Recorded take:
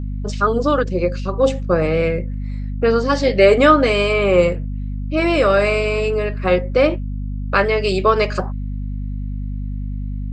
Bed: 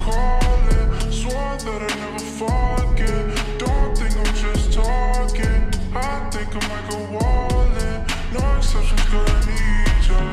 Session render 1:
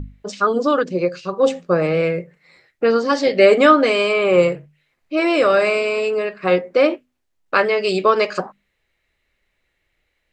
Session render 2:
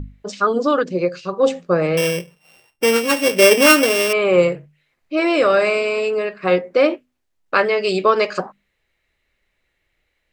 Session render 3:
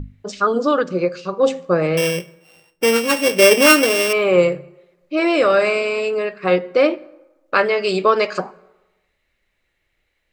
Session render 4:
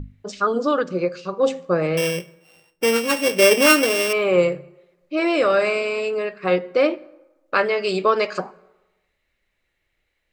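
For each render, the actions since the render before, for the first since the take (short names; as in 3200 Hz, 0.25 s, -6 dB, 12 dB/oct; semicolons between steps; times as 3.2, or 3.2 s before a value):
notches 50/100/150/200/250 Hz
1.97–4.13 sample sorter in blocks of 16 samples
plate-style reverb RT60 1.1 s, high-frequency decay 0.6×, DRR 19.5 dB
gain -3 dB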